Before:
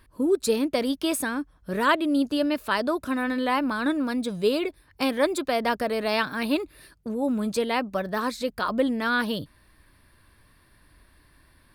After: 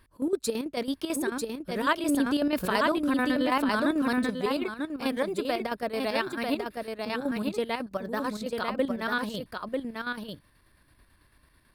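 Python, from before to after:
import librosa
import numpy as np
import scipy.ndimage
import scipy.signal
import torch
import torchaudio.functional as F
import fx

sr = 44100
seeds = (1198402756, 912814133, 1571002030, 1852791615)

y = fx.chopper(x, sr, hz=9.1, depth_pct=65, duty_pct=55)
y = y + 10.0 ** (-4.0 / 20.0) * np.pad(y, (int(944 * sr / 1000.0), 0))[:len(y)]
y = fx.env_flatten(y, sr, amount_pct=50, at=(2.05, 4.29), fade=0.02)
y = F.gain(torch.from_numpy(y), -3.5).numpy()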